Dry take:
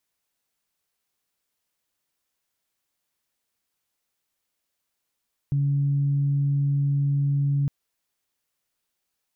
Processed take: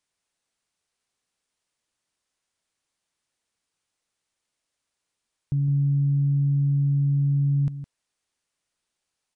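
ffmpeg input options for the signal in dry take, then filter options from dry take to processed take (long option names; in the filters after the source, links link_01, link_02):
-f lavfi -i "aevalsrc='0.106*sin(2*PI*141*t)+0.0106*sin(2*PI*282*t)':duration=2.16:sample_rate=44100"
-filter_complex "[0:a]asplit=2[link_01][link_02];[link_02]aecho=0:1:162:0.266[link_03];[link_01][link_03]amix=inputs=2:normalize=0,aresample=22050,aresample=44100"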